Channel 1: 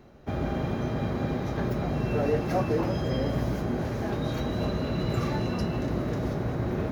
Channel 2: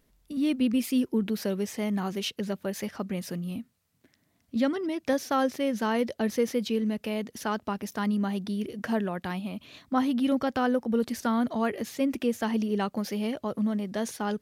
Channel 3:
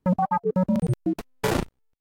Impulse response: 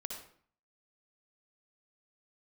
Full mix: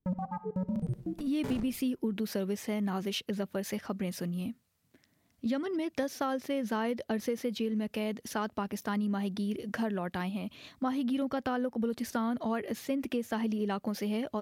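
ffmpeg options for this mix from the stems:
-filter_complex "[1:a]adynamicequalizer=threshold=0.00282:dfrequency=6600:dqfactor=0.84:tfrequency=6600:tqfactor=0.84:attack=5:release=100:ratio=0.375:range=2.5:mode=cutabove:tftype=bell,adelay=900,volume=-1dB[a];[2:a]lowshelf=f=330:g=10,volume=-18.5dB,asplit=2[b][c];[c]volume=-7.5dB[d];[3:a]atrim=start_sample=2205[e];[d][e]afir=irnorm=-1:irlink=0[f];[a][b][f]amix=inputs=3:normalize=0,acompressor=threshold=-28dB:ratio=6"

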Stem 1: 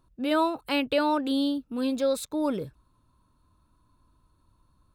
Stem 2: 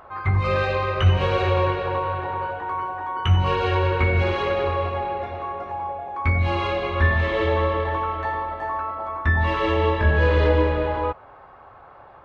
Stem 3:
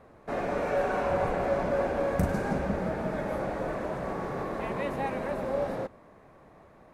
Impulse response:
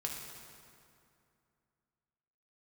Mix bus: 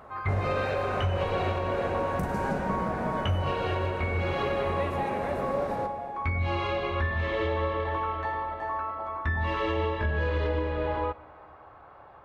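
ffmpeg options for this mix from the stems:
-filter_complex "[1:a]volume=-5.5dB,asplit=2[a][b];[b]volume=-15.5dB[c];[2:a]volume=-3.5dB,asplit=2[d][e];[e]volume=-4dB[f];[3:a]atrim=start_sample=2205[g];[c][f]amix=inputs=2:normalize=0[h];[h][g]afir=irnorm=-1:irlink=0[i];[a][d][i]amix=inputs=3:normalize=0,alimiter=limit=-18.5dB:level=0:latency=1:release=336"

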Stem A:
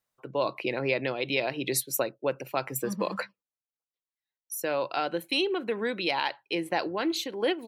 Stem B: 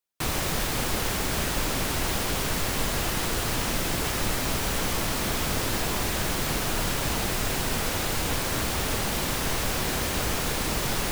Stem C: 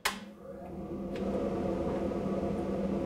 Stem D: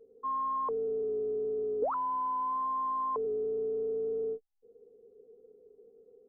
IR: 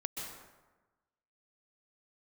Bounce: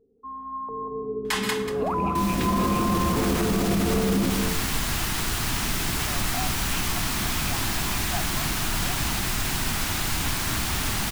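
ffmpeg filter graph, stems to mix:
-filter_complex "[0:a]asplit=3[a][b][c];[a]bandpass=f=730:t=q:w=8,volume=0dB[d];[b]bandpass=f=1.09k:t=q:w=8,volume=-6dB[e];[c]bandpass=f=2.44k:t=q:w=8,volume=-9dB[f];[d][e][f]amix=inputs=3:normalize=0,adelay=1400,volume=-7.5dB[g];[1:a]dynaudnorm=f=160:g=11:m=6dB,adelay=1950,volume=-15dB[h];[2:a]adelay=1250,volume=2.5dB,asplit=3[i][j][k];[j]volume=-7.5dB[l];[k]volume=-6dB[m];[3:a]tiltshelf=f=850:g=9.5,volume=-5dB,asplit=3[n][o][p];[o]volume=-4.5dB[q];[p]volume=-6dB[r];[4:a]atrim=start_sample=2205[s];[l][q]amix=inputs=2:normalize=0[t];[t][s]afir=irnorm=-1:irlink=0[u];[m][r]amix=inputs=2:normalize=0,aecho=0:1:187|374|561|748:1|0.22|0.0484|0.0106[v];[g][h][i][n][u][v]amix=inputs=6:normalize=0,equalizer=f=500:w=2.1:g=-14.5,dynaudnorm=f=670:g=3:m=11dB,alimiter=limit=-14.5dB:level=0:latency=1:release=27"

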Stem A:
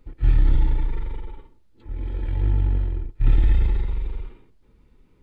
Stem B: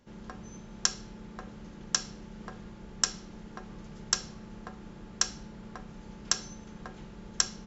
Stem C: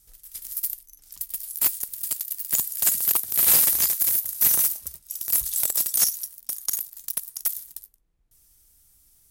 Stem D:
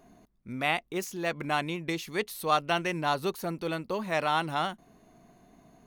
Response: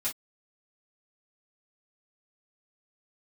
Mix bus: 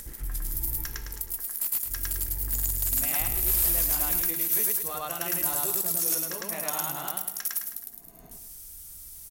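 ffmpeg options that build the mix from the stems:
-filter_complex "[0:a]volume=-8dB[a];[1:a]highpass=f=290:w=0.5412,highpass=f=290:w=1.3066,equalizer=f=1.9k:w=1.8:g=14.5,volume=-13dB,asplit=2[b][c];[c]volume=-3dB[d];[2:a]highshelf=f=9.8k:g=5.5,alimiter=limit=-6dB:level=0:latency=1:release=173,volume=-2.5dB,asplit=2[e][f];[f]volume=-6.5dB[g];[3:a]adelay=2400,volume=-7dB,asplit=2[h][i];[i]volume=-4.5dB[j];[b][e]amix=inputs=2:normalize=0,acompressor=threshold=-33dB:ratio=2,volume=0dB[k];[a][h]amix=inputs=2:normalize=0,flanger=delay=16:depth=7.2:speed=1.2,alimiter=level_in=3.5dB:limit=-24dB:level=0:latency=1:release=92,volume=-3.5dB,volume=0dB[l];[d][g][j]amix=inputs=3:normalize=0,aecho=0:1:106|212|318|424|530|636:1|0.4|0.16|0.064|0.0256|0.0102[m];[k][l][m]amix=inputs=3:normalize=0,acompressor=mode=upward:threshold=-31dB:ratio=2.5"

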